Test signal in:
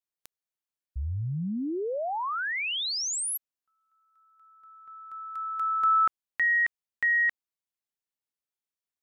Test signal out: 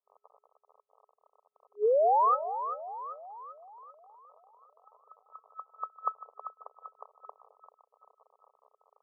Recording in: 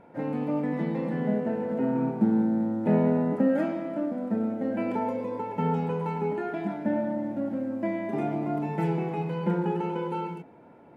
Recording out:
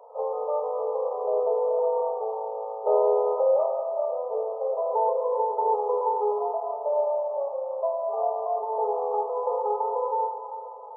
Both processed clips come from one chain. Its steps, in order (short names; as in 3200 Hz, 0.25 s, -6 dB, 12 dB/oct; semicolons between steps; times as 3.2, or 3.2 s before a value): split-band echo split 620 Hz, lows 0.212 s, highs 0.391 s, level -10 dB; crackle 51/s -39 dBFS; FFT band-pass 410–1300 Hz; gain +7 dB